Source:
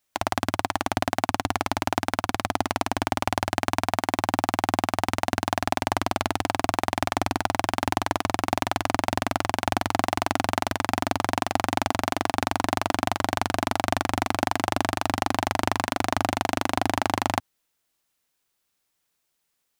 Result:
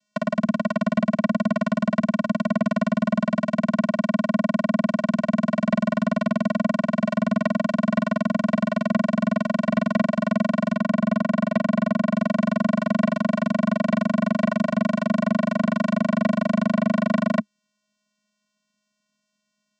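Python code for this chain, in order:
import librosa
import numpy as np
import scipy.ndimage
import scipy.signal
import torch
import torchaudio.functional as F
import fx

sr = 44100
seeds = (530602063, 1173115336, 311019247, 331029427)

p1 = fx.median_filter(x, sr, points=9, at=(10.75, 12.16))
p2 = fx.high_shelf(p1, sr, hz=3200.0, db=7.0)
p3 = fx.level_steps(p2, sr, step_db=11)
p4 = p2 + (p3 * 10.0 ** (1.0 / 20.0))
p5 = fx.vocoder(p4, sr, bands=8, carrier='square', carrier_hz=209.0)
p6 = 10.0 ** (-19.0 / 20.0) * np.tanh(p5 / 10.0 ** (-19.0 / 20.0))
y = p6 * 10.0 ** (5.0 / 20.0)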